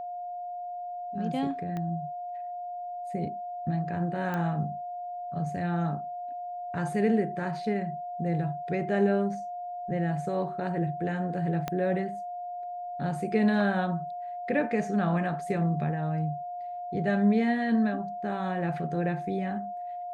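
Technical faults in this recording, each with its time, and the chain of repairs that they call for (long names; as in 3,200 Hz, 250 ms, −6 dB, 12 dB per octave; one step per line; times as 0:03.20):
whistle 710 Hz −34 dBFS
0:01.77: click −23 dBFS
0:04.34: click −20 dBFS
0:11.68: click −16 dBFS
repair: click removal
notch filter 710 Hz, Q 30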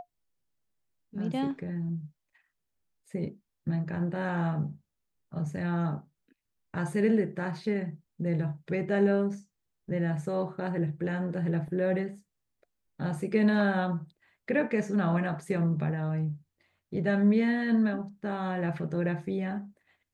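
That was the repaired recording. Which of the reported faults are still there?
0:01.77: click
0:11.68: click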